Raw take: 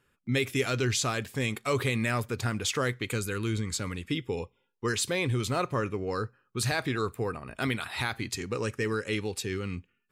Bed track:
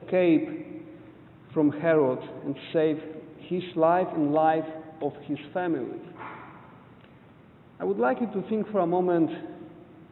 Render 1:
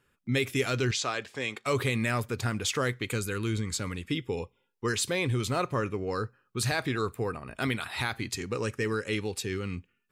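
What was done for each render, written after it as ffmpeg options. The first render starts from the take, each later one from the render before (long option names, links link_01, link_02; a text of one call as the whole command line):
ffmpeg -i in.wav -filter_complex "[0:a]asettb=1/sr,asplit=3[link_01][link_02][link_03];[link_01]atrim=end=0.914[link_04];[link_02]atrim=start=0.91:end=1.66,asetpts=PTS-STARTPTS,afade=type=in:duration=0.004:curve=qsin,afade=type=out:start_time=0.746:duration=0.004:curve=qsin,acrossover=split=330 7300:gain=0.224 1 0.1[link_05][link_06][link_07];[link_05][link_06][link_07]amix=inputs=3:normalize=0[link_08];[link_03]atrim=start=1.656[link_09];[link_04][link_08]acrossfade=duration=0.004:curve1=hsin:curve2=qsin[link_10];[link_10][link_09]acrossfade=duration=0.004:curve1=qsin:curve2=hsin" out.wav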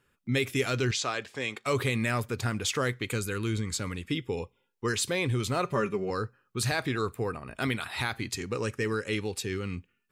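ffmpeg -i in.wav -filter_complex "[0:a]asettb=1/sr,asplit=3[link_01][link_02][link_03];[link_01]atrim=end=5.644[link_04];[link_02]atrim=start=5.64:end=6.1,asetpts=PTS-STARTPTS,afade=type=in:duration=0.004:curve=qsin,afade=type=out:start_time=0.456:duration=0.004:curve=qsin,aecho=1:1:5.1:0.7,atrim=end_sample=20286[link_05];[link_03]atrim=start=6.096[link_06];[link_04][link_05]acrossfade=duration=0.004:curve1=hsin:curve2=qsin[link_07];[link_07][link_06]acrossfade=duration=0.004:curve1=qsin:curve2=hsin" out.wav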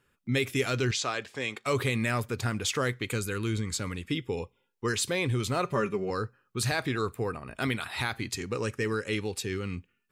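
ffmpeg -i in.wav -af anull out.wav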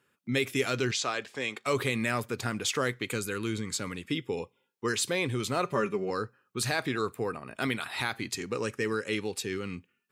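ffmpeg -i in.wav -af "highpass=150" out.wav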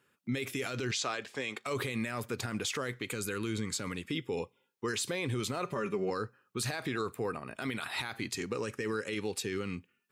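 ffmpeg -i in.wav -af "alimiter=limit=-24dB:level=0:latency=1:release=43" out.wav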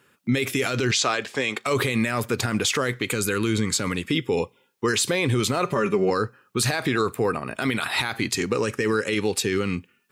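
ffmpeg -i in.wav -af "volume=11.5dB" out.wav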